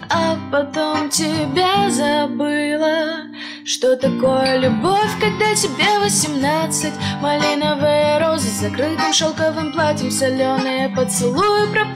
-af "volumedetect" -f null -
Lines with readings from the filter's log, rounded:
mean_volume: -17.5 dB
max_volume: -5.3 dB